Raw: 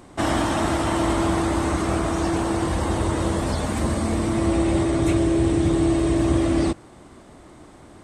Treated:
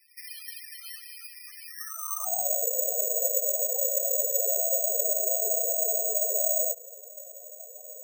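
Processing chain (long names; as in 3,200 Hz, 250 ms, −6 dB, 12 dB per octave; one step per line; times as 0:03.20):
lower of the sound and its delayed copy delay 1.6 ms
high-pass filter 160 Hz 24 dB per octave
parametric band 650 Hz +3.5 dB 1.2 octaves
downward compressor 10 to 1, threshold −27 dBFS, peak gain reduction 9.5 dB
high-pass filter sweep 2,300 Hz → 460 Hz, 0:01.70–0:02.66
spectral peaks only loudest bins 4
on a send at −20 dB: convolution reverb RT60 0.70 s, pre-delay 5 ms
on the sum: bad sample-rate conversion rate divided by 6×, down filtered, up zero stuff
level −4.5 dB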